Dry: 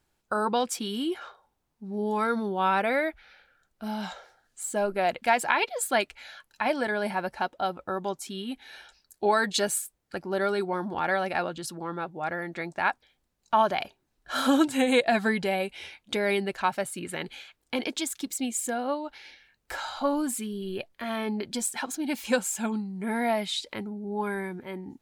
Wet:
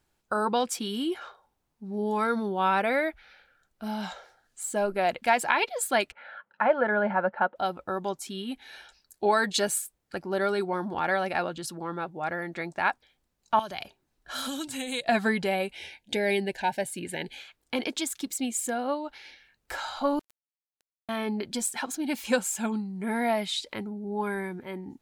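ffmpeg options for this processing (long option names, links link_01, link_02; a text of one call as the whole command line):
ffmpeg -i in.wav -filter_complex "[0:a]asettb=1/sr,asplit=3[link_01][link_02][link_03];[link_01]atrim=end=6.124[link_04];[link_02]atrim=start=6.12:end=7.56,asetpts=PTS-STARTPTS,afade=type=in:duration=0.004:curve=qsin,afade=type=out:start_time=1.436:duration=0.004:curve=qsin,highpass=180,equalizer=frequency=200:width_type=q:width=4:gain=7,equalizer=frequency=290:width_type=q:width=4:gain=-7,equalizer=frequency=540:width_type=q:width=4:gain=8,equalizer=frequency=880:width_type=q:width=4:gain=3,equalizer=frequency=1400:width_type=q:width=4:gain=8,equalizer=frequency=2400:width_type=q:width=4:gain=-6,lowpass=frequency=2500:width=0.5412,lowpass=frequency=2500:width=1.3066[link_05];[link_03]atrim=start=7.556[link_06];[link_04][link_05]acrossfade=duration=0.004:curve1=hsin:curve2=qsin[link_07];[link_07][link_06]acrossfade=duration=0.004:curve1=qsin:curve2=hsin,asettb=1/sr,asplit=3[link_08][link_09][link_10];[link_08]atrim=end=13.594[link_11];[link_09]atrim=start=13.59:end=15.09,asetpts=PTS-STARTPTS,afade=type=in:duration=0.004:curve=qsin,afade=type=out:start_time=1.496:duration=0.004:curve=qsin,acrossover=split=130|3000[link_12][link_13][link_14];[link_13]acompressor=threshold=-38dB:ratio=3:attack=3.2:release=140:knee=2.83:detection=peak[link_15];[link_12][link_15][link_14]amix=inputs=3:normalize=0[link_16];[link_10]atrim=start=15.086[link_17];[link_11][link_16]acrossfade=duration=0.004:curve1=hsin:curve2=qsin[link_18];[link_18][link_17]acrossfade=duration=0.004:curve1=qsin:curve2=hsin,asettb=1/sr,asplit=3[link_19][link_20][link_21];[link_19]atrim=end=15.754[link_22];[link_20]atrim=start=15.75:end=17.38,asetpts=PTS-STARTPTS,afade=type=in:duration=0.004:curve=qsin,afade=type=out:start_time=1.626:duration=0.004:curve=qsin,asuperstop=centerf=1200:order=12:qfactor=2.4[link_23];[link_21]atrim=start=17.376[link_24];[link_22][link_23]acrossfade=duration=0.004:curve1=hsin:curve2=qsin[link_25];[link_25][link_24]acrossfade=duration=0.004:curve1=qsin:curve2=hsin,asettb=1/sr,asplit=3[link_26][link_27][link_28];[link_26]atrim=end=20.194[link_29];[link_27]atrim=start=20.19:end=21.09,asetpts=PTS-STARTPTS,afade=type=in:duration=0.004:curve=qsin,afade=type=out:start_time=0.896:duration=0.004:curve=qsin,acrusher=bits=2:mix=0:aa=0.5[link_30];[link_28]atrim=start=21.086[link_31];[link_29][link_30]acrossfade=duration=0.004:curve1=hsin:curve2=qsin[link_32];[link_32][link_31]acrossfade=duration=0.004:curve1=qsin:curve2=hsin" out.wav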